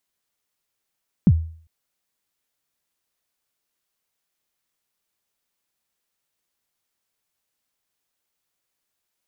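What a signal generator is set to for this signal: kick drum length 0.40 s, from 230 Hz, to 81 Hz, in 50 ms, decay 0.49 s, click off, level -7 dB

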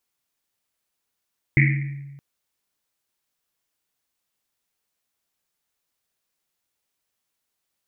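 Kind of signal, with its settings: Risset drum length 0.62 s, pitch 140 Hz, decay 1.39 s, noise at 2.1 kHz, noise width 520 Hz, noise 30%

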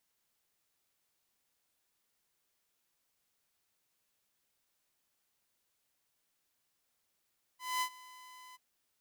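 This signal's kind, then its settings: ADSR saw 1.01 kHz, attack 224 ms, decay 76 ms, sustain -21.5 dB, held 0.96 s, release 24 ms -27.5 dBFS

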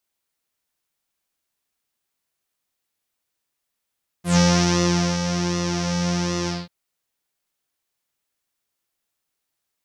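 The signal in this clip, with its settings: synth patch with pulse-width modulation F3, sub -12 dB, filter lowpass, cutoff 4.2 kHz, Q 5.3, filter envelope 1.5 oct, filter decay 0.12 s, filter sustain 30%, attack 125 ms, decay 0.85 s, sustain -8 dB, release 0.20 s, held 2.24 s, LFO 1.3 Hz, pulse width 36%, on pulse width 14%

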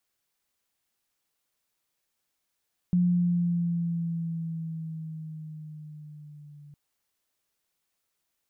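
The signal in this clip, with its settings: gliding synth tone sine, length 3.81 s, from 178 Hz, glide -3.5 st, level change -27 dB, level -19 dB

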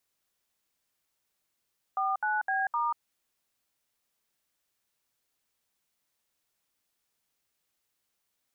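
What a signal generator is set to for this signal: DTMF "49B*", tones 188 ms, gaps 68 ms, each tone -28.5 dBFS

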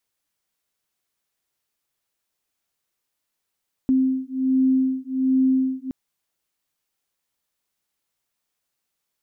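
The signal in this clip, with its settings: beating tones 261 Hz, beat 1.3 Hz, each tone -20.5 dBFS 2.02 s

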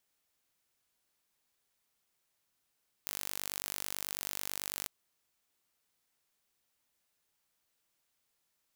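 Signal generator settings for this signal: pulse train 49.1 per s, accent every 0, -10.5 dBFS 1.80 s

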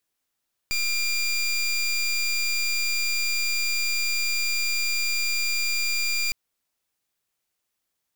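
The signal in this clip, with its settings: pulse 2.39 kHz, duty 22% -24.5 dBFS 5.61 s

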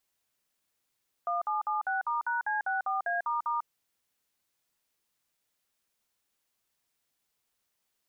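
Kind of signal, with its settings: DTMF "1776*#C64A**", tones 146 ms, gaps 53 ms, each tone -30 dBFS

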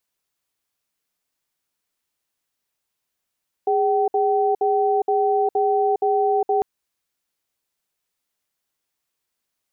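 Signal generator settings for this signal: cadence 411 Hz, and 767 Hz, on 0.41 s, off 0.06 s, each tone -19 dBFS 2.95 s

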